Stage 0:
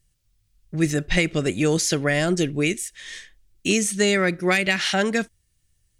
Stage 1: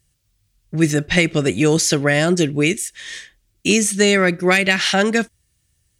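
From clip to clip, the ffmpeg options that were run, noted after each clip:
-af "highpass=51,volume=1.78"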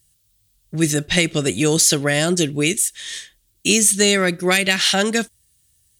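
-af "aexciter=amount=2.3:drive=5:freq=3100,volume=0.75"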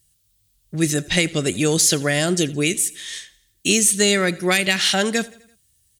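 -af "aecho=1:1:84|168|252|336:0.0794|0.0421|0.0223|0.0118,volume=0.841"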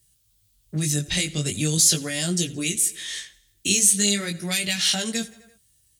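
-filter_complex "[0:a]acrossover=split=190|3000[s0][s1][s2];[s1]acompressor=threshold=0.0282:ratio=10[s3];[s0][s3][s2]amix=inputs=3:normalize=0,flanger=delay=17:depth=3.8:speed=0.41,volume=1.41"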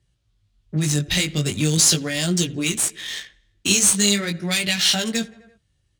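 -af "adynamicsmooth=sensitivity=5.5:basefreq=2700,volume=1.58"

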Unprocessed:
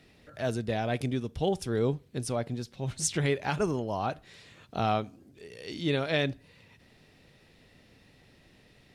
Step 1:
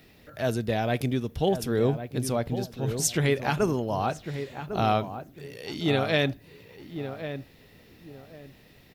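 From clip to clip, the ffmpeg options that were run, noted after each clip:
-filter_complex "[0:a]aexciter=amount=6.2:drive=4.5:freq=12000,asplit=2[s0][s1];[s1]adelay=1102,lowpass=f=1300:p=1,volume=0.355,asplit=2[s2][s3];[s3]adelay=1102,lowpass=f=1300:p=1,volume=0.26,asplit=2[s4][s5];[s5]adelay=1102,lowpass=f=1300:p=1,volume=0.26[s6];[s2][s4][s6]amix=inputs=3:normalize=0[s7];[s0][s7]amix=inputs=2:normalize=0,volume=1.5"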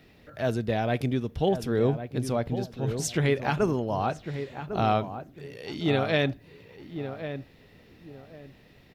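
-af "lowpass=f=3800:p=1"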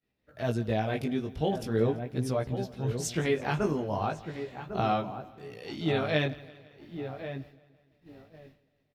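-af "agate=range=0.0224:threshold=0.00794:ratio=3:detection=peak,flanger=delay=15:depth=4.9:speed=0.4,aecho=1:1:168|336|504|672:0.0944|0.0529|0.0296|0.0166"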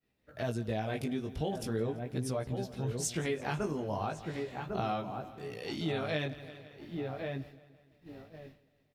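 -af "adynamicequalizer=threshold=0.00112:dfrequency=9100:dqfactor=0.93:tfrequency=9100:tqfactor=0.93:attack=5:release=100:ratio=0.375:range=3.5:mode=boostabove:tftype=bell,acompressor=threshold=0.0158:ratio=2.5,volume=1.26"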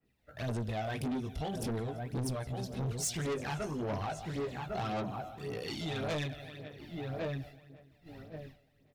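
-af "aphaser=in_gain=1:out_gain=1:delay=1.5:decay=0.56:speed=1.8:type=sinusoidal,asoftclip=type=tanh:threshold=0.0282,adynamicequalizer=threshold=0.00178:dfrequency=3300:dqfactor=0.7:tfrequency=3300:tqfactor=0.7:attack=5:release=100:ratio=0.375:range=1.5:mode=boostabove:tftype=highshelf"

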